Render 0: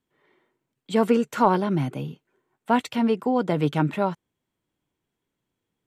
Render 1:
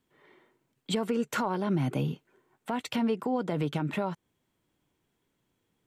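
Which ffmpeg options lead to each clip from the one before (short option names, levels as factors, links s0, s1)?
-af "acompressor=threshold=0.0447:ratio=6,alimiter=limit=0.0631:level=0:latency=1:release=107,volume=1.68"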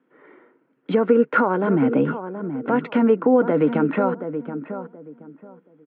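-filter_complex "[0:a]highpass=f=170:w=0.5412,highpass=f=170:w=1.3066,equalizer=f=280:t=q:w=4:g=9,equalizer=f=490:t=q:w=4:g=9,equalizer=f=1400:t=q:w=4:g=8,lowpass=f=2300:w=0.5412,lowpass=f=2300:w=1.3066,asplit=2[s0][s1];[s1]adelay=726,lowpass=f=1100:p=1,volume=0.355,asplit=2[s2][s3];[s3]adelay=726,lowpass=f=1100:p=1,volume=0.25,asplit=2[s4][s5];[s5]adelay=726,lowpass=f=1100:p=1,volume=0.25[s6];[s0][s2][s4][s6]amix=inputs=4:normalize=0,volume=2.24"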